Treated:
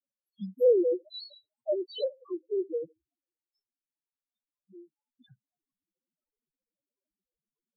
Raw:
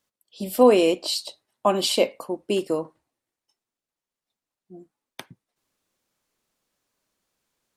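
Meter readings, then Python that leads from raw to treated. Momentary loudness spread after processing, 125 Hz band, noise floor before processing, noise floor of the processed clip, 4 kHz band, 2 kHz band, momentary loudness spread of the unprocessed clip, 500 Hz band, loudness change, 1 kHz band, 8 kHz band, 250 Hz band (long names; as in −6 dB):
19 LU, below −10 dB, below −85 dBFS, below −85 dBFS, −16.5 dB, below −40 dB, 18 LU, −6.0 dB, −7.0 dB, below −30 dB, below −40 dB, −11.0 dB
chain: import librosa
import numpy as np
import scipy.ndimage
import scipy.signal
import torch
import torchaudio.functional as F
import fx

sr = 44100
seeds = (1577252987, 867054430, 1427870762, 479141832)

y = fx.spec_topn(x, sr, count=1)
y = fx.env_lowpass_down(y, sr, base_hz=1600.0, full_db=-26.0)
y = fx.dispersion(y, sr, late='highs', ms=64.0, hz=640.0)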